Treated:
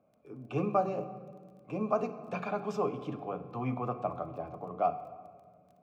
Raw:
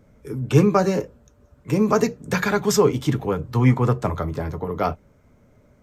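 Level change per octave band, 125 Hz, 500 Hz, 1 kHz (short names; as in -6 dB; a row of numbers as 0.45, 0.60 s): -19.0, -12.0, -7.0 dB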